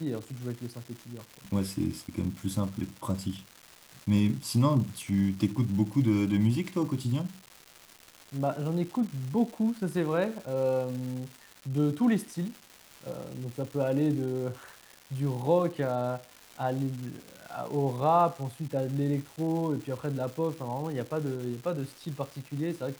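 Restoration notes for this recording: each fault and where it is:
crackle 510/s -38 dBFS

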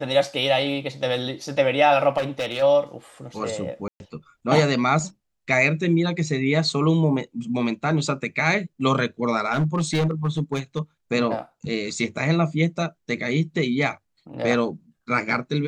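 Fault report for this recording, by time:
2.17–2.63 clipped -20.5 dBFS
3.88–4 gap 0.12 s
9.53–10.79 clipped -17 dBFS

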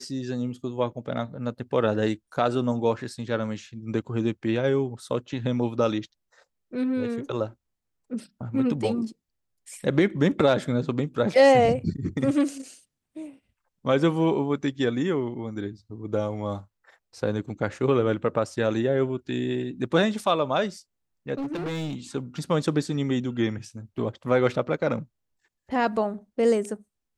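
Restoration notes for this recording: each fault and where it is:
21.34–21.96 clipped -27 dBFS

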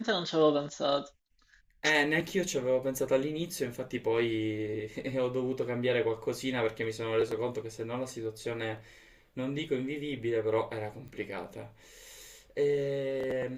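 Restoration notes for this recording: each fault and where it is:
11.08 pop -37 dBFS

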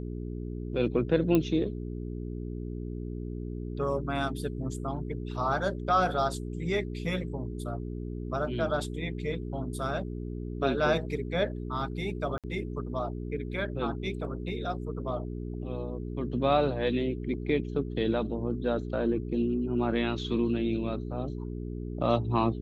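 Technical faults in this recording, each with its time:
hum 60 Hz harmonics 7 -36 dBFS
1.35 pop -13 dBFS
12.38–12.44 gap 57 ms

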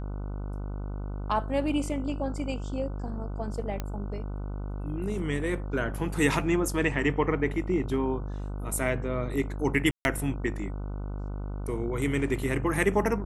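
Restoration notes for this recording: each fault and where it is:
buzz 50 Hz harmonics 30 -34 dBFS
3.8 pop -18 dBFS
9.91–10.05 gap 0.141 s

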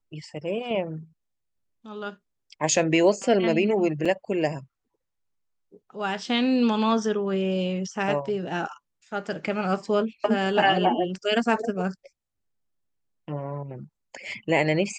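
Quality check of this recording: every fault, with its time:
4.05–4.06 gap 5.2 ms

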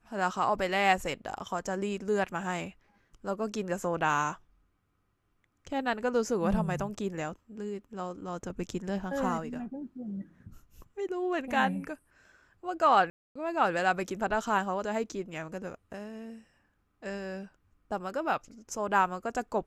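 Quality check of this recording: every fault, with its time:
13.1–13.36 gap 0.255 s

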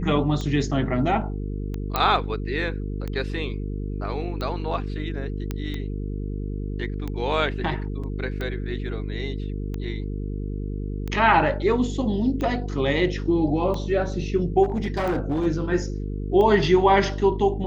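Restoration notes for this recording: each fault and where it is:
buzz 50 Hz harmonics 9 -29 dBFS
tick 45 rpm -18 dBFS
1.96 pop -8 dBFS
5.51 pop -15 dBFS
8.03–8.04 gap 5.7 ms
14.63–15.47 clipped -20 dBFS

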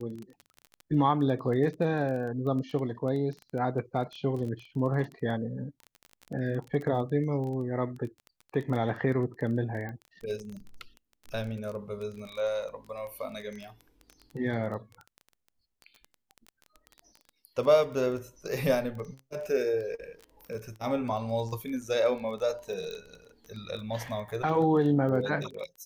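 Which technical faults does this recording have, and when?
crackle 15/s -35 dBFS
9.89 pop -28 dBFS
22.91 pop

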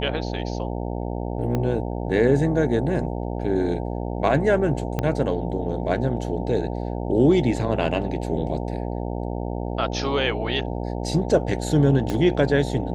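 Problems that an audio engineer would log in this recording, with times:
buzz 60 Hz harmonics 15 -28 dBFS
1.55 pop -13 dBFS
4.99 pop -11 dBFS
12.1 pop -13 dBFS

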